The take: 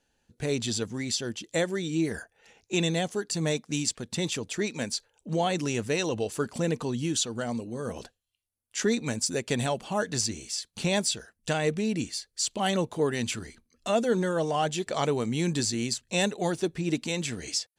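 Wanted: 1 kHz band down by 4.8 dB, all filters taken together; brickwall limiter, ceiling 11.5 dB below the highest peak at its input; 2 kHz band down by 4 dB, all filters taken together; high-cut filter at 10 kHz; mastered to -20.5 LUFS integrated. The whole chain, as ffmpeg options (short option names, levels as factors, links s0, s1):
-af "lowpass=10000,equalizer=f=1000:t=o:g=-6.5,equalizer=f=2000:t=o:g=-3.5,volume=5.31,alimiter=limit=0.282:level=0:latency=1"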